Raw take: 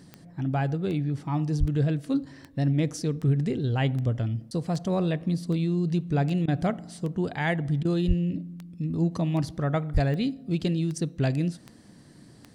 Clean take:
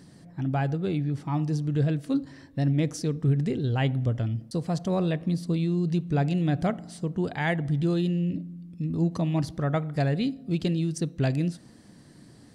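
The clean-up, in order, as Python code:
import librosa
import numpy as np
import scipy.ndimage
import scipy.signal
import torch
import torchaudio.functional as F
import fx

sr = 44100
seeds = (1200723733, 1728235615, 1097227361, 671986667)

y = fx.fix_declick_ar(x, sr, threshold=10.0)
y = fx.highpass(y, sr, hz=140.0, slope=24, at=(1.59, 1.71), fade=0.02)
y = fx.highpass(y, sr, hz=140.0, slope=24, at=(8.07, 8.19), fade=0.02)
y = fx.highpass(y, sr, hz=140.0, slope=24, at=(9.93, 10.05), fade=0.02)
y = fx.fix_interpolate(y, sr, at_s=(6.46, 7.83), length_ms=19.0)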